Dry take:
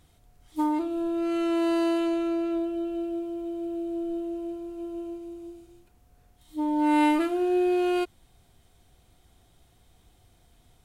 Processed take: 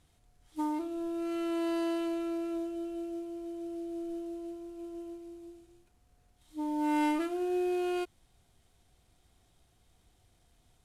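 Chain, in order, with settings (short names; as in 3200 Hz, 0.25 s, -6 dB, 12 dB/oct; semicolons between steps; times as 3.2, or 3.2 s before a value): CVSD 64 kbps; gain -7 dB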